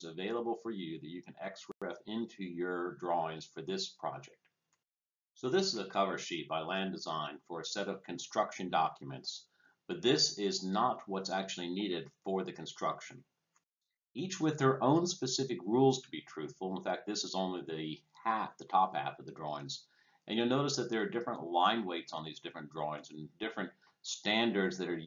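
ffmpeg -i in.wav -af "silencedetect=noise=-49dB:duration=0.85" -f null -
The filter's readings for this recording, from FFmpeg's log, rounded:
silence_start: 4.28
silence_end: 5.39 | silence_duration: 1.11
silence_start: 13.19
silence_end: 14.16 | silence_duration: 0.96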